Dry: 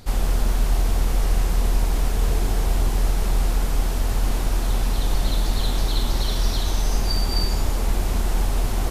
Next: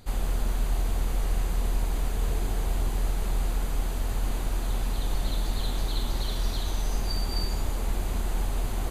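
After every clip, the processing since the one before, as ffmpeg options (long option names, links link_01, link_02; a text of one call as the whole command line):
ffmpeg -i in.wav -af "bandreject=frequency=5400:width=5.6,volume=-6.5dB" out.wav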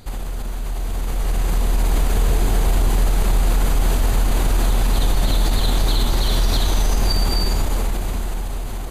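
ffmpeg -i in.wav -af "alimiter=level_in=3dB:limit=-24dB:level=0:latency=1:release=70,volume=-3dB,dynaudnorm=framelen=200:gausssize=13:maxgain=10dB,volume=7.5dB" out.wav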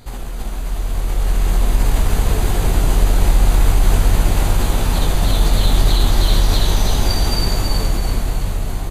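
ffmpeg -i in.wav -filter_complex "[0:a]flanger=delay=16.5:depth=6:speed=0.42,asplit=6[link_01][link_02][link_03][link_04][link_05][link_06];[link_02]adelay=329,afreqshift=-65,volume=-4dB[link_07];[link_03]adelay=658,afreqshift=-130,volume=-12.6dB[link_08];[link_04]adelay=987,afreqshift=-195,volume=-21.3dB[link_09];[link_05]adelay=1316,afreqshift=-260,volume=-29.9dB[link_10];[link_06]adelay=1645,afreqshift=-325,volume=-38.5dB[link_11];[link_01][link_07][link_08][link_09][link_10][link_11]amix=inputs=6:normalize=0,volume=4dB" out.wav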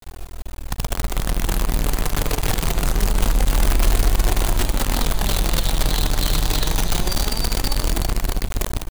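ffmpeg -i in.wav -af "flanger=delay=2.7:depth=4.1:regen=40:speed=0.24:shape=sinusoidal,acrusher=bits=4:dc=4:mix=0:aa=0.000001,volume=-2dB" out.wav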